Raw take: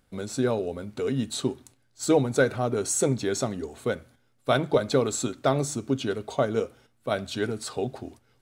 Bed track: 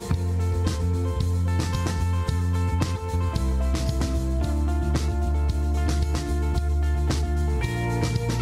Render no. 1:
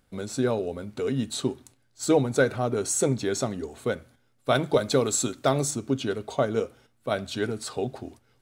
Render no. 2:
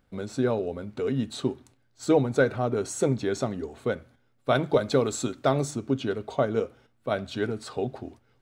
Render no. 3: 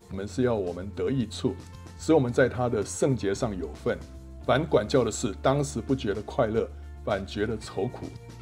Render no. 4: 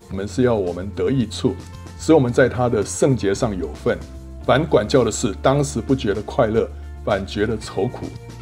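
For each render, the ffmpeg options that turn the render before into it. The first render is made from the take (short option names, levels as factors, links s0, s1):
-filter_complex "[0:a]asettb=1/sr,asplit=3[s0][s1][s2];[s0]atrim=end=4.554[s3];[s1]atrim=start=4.55:end=5.71,asetpts=PTS-STARTPTS,afade=t=in:d=0.004:c=qsin,afade=t=out:st=1.156:d=0.004:c=qsin,highshelf=f=4600:g=7[s4];[s2]atrim=start=5.706[s5];[s3][s4]acrossfade=d=0.004:c1=hsin:c2=qsin[s6];[s6][s5]acrossfade=d=0.004:c1=qsin:c2=hsin"
-af "equalizer=f=12000:w=0.36:g=-11.5"
-filter_complex "[1:a]volume=0.112[s0];[0:a][s0]amix=inputs=2:normalize=0"
-af "volume=2.51,alimiter=limit=0.708:level=0:latency=1"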